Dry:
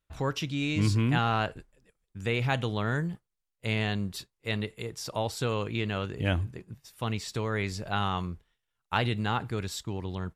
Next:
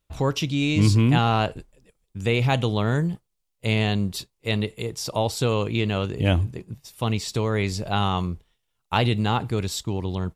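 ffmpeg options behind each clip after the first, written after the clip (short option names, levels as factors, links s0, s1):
-af "equalizer=f=1600:t=o:w=0.82:g=-7.5,volume=2.37"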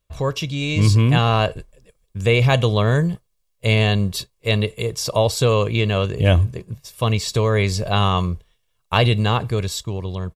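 -af "aecho=1:1:1.8:0.46,dynaudnorm=f=100:g=17:m=1.88"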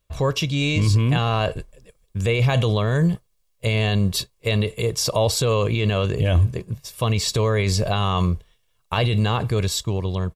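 -af "alimiter=limit=0.211:level=0:latency=1:release=25,volume=1.33"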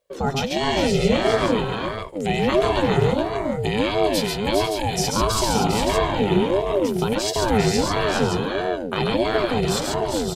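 -filter_complex "[0:a]asplit=2[s0][s1];[s1]aecho=0:1:98|137|402|424|497|568:0.2|0.668|0.501|0.355|0.224|0.473[s2];[s0][s2]amix=inputs=2:normalize=0,aeval=exprs='val(0)*sin(2*PI*410*n/s+410*0.35/1.5*sin(2*PI*1.5*n/s))':c=same"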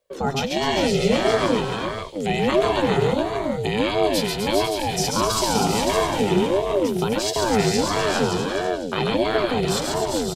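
-filter_complex "[0:a]acrossover=split=140|1200|3500[s0][s1][s2][s3];[s0]asoftclip=type=tanh:threshold=0.0224[s4];[s3]aecho=1:1:252|504|756|1008|1260|1512:0.501|0.256|0.13|0.0665|0.0339|0.0173[s5];[s4][s1][s2][s5]amix=inputs=4:normalize=0"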